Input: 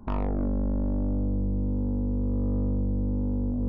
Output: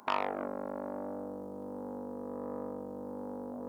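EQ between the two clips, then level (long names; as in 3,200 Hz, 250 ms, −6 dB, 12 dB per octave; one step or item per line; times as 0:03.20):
high-pass filter 670 Hz 12 dB per octave
high-shelf EQ 2,100 Hz +11.5 dB
+4.5 dB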